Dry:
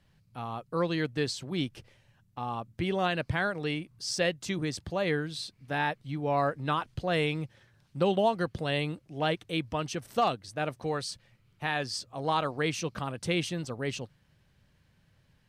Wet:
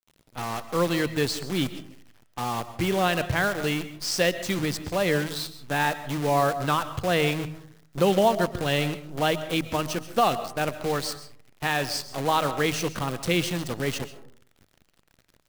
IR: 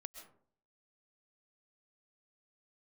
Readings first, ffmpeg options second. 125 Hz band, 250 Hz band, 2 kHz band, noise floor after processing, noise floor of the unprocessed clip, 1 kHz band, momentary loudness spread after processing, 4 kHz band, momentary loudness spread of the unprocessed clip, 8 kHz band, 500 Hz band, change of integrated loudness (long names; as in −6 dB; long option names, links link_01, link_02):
+4.5 dB, +5.0 dB, +5.5 dB, −64 dBFS, −67 dBFS, +5.5 dB, 10 LU, +5.5 dB, 9 LU, +7.5 dB, +5.0 dB, +5.5 dB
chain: -filter_complex "[0:a]acrusher=bits=7:dc=4:mix=0:aa=0.000001,bandreject=frequency=52.87:width_type=h:width=4,bandreject=frequency=105.74:width_type=h:width=4,bandreject=frequency=158.61:width_type=h:width=4,asplit=2[link_01][link_02];[1:a]atrim=start_sample=2205[link_03];[link_02][link_03]afir=irnorm=-1:irlink=0,volume=5.5dB[link_04];[link_01][link_04]amix=inputs=2:normalize=0,volume=-1dB"